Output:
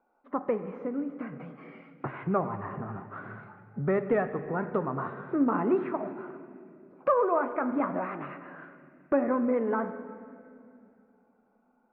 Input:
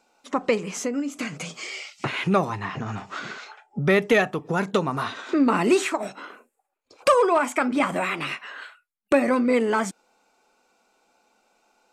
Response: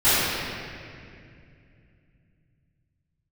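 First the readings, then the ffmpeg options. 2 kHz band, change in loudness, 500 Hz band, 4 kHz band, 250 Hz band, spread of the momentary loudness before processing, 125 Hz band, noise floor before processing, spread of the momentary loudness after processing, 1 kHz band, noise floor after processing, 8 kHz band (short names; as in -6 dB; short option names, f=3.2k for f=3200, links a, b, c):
-13.0 dB, -6.5 dB, -6.0 dB, under -30 dB, -5.5 dB, 15 LU, -6.0 dB, -77 dBFS, 19 LU, -6.5 dB, -69 dBFS, under -40 dB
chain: -filter_complex "[0:a]lowpass=f=1.5k:w=0.5412,lowpass=f=1.5k:w=1.3066,asplit=2[a][b];[1:a]atrim=start_sample=2205[c];[b][c]afir=irnorm=-1:irlink=0,volume=-31dB[d];[a][d]amix=inputs=2:normalize=0,volume=-6.5dB"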